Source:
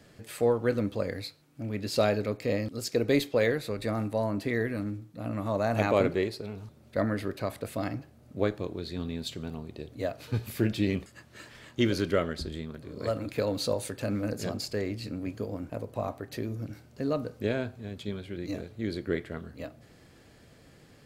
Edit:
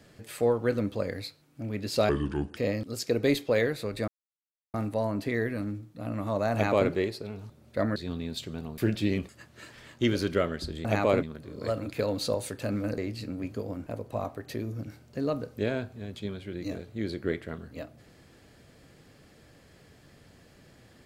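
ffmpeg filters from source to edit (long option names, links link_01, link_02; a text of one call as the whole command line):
ffmpeg -i in.wav -filter_complex "[0:a]asplit=9[link_01][link_02][link_03][link_04][link_05][link_06][link_07][link_08][link_09];[link_01]atrim=end=2.094[link_10];[link_02]atrim=start=2.09:end=2.42,asetpts=PTS-STARTPTS,asetrate=30429,aresample=44100,atrim=end_sample=21091,asetpts=PTS-STARTPTS[link_11];[link_03]atrim=start=2.416:end=3.93,asetpts=PTS-STARTPTS,afade=type=out:start_time=1.51:duration=0.004:curve=hsin,apad=pad_dur=0.66[link_12];[link_04]atrim=start=3.93:end=7.152,asetpts=PTS-STARTPTS,afade=type=in:duration=0.004:curve=hsin[link_13];[link_05]atrim=start=8.848:end=9.672[link_14];[link_06]atrim=start=10.548:end=12.622[link_15];[link_07]atrim=start=5.718:end=6.102[link_16];[link_08]atrim=start=12.618:end=14.372[link_17];[link_09]atrim=start=14.808[link_18];[link_10][link_11]acrossfade=duration=0.004:curve1=hsin:curve2=hsin[link_19];[link_12][link_13]concat=n=2:v=0:a=1[link_20];[link_19][link_20]acrossfade=duration=0.004:curve1=hsin:curve2=hsin[link_21];[link_21][link_14]acrossfade=duration=0.004:curve1=hsin:curve2=hsin[link_22];[link_22][link_15]acrossfade=duration=0.004:curve1=hsin:curve2=hsin[link_23];[link_23][link_16]acrossfade=duration=0.004:curve1=hsin:curve2=hsin[link_24];[link_24][link_17]acrossfade=duration=0.004:curve1=hsin:curve2=hsin[link_25];[link_25][link_18]acrossfade=duration=0.004:curve1=hsin:curve2=hsin" out.wav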